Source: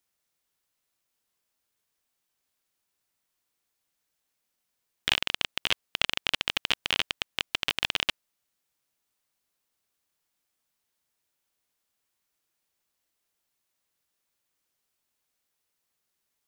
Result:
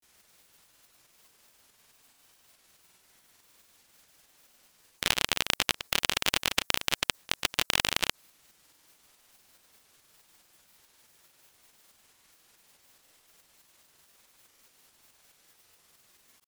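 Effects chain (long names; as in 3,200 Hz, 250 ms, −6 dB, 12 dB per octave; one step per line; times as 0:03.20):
granular cloud
shaped tremolo saw up 4.7 Hz, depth 35%
every bin compressed towards the loudest bin 2 to 1
level +5.5 dB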